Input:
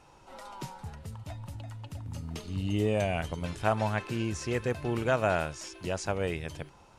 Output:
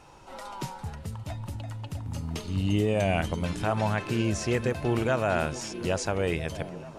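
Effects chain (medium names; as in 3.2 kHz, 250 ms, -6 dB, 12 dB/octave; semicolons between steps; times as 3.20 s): peak limiter -20.5 dBFS, peak gain reduction 8 dB; repeats whose band climbs or falls 434 ms, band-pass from 190 Hz, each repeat 0.7 oct, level -8 dB; trim +5 dB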